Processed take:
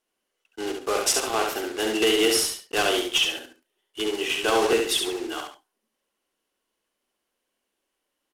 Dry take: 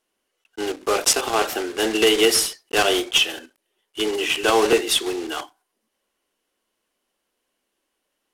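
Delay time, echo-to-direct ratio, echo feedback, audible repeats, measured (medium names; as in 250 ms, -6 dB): 68 ms, -4.0 dB, no regular repeats, 2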